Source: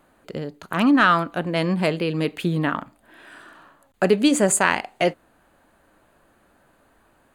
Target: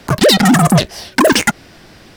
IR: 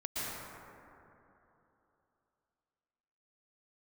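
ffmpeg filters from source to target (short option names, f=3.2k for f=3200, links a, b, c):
-filter_complex "[0:a]afreqshift=-110,asplit=2[a][b];[b]acompressor=threshold=-27dB:ratio=6,volume=1.5dB[c];[a][c]amix=inputs=2:normalize=0,lowshelf=f=94:g=10.5,asetrate=149940,aresample=44100,asoftclip=type=tanh:threshold=-13dB,volume=8.5dB"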